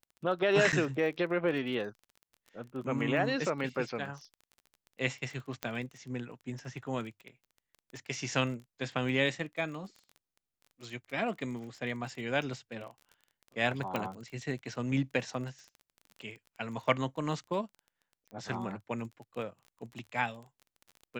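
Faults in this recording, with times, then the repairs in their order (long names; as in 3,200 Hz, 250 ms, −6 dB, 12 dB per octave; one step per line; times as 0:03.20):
surface crackle 23 per second −41 dBFS
0:00.72–0:00.73: drop-out 8.2 ms
0:05.63: click −18 dBFS
0:13.96: click −18 dBFS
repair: click removal
repair the gap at 0:00.72, 8.2 ms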